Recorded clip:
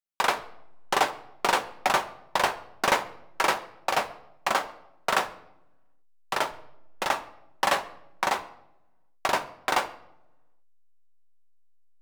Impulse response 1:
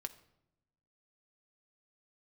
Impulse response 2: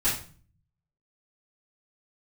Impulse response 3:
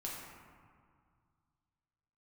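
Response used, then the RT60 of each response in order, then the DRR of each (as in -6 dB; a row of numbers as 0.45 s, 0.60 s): 1; 0.85 s, 0.40 s, 2.0 s; 8.5 dB, -12.5 dB, -4.5 dB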